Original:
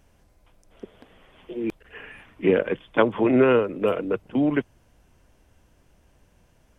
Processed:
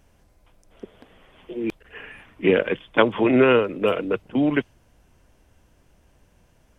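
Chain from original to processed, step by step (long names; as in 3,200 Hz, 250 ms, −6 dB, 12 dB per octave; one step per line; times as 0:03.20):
dynamic equaliser 3,300 Hz, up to +7 dB, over −43 dBFS, Q 0.74
level +1 dB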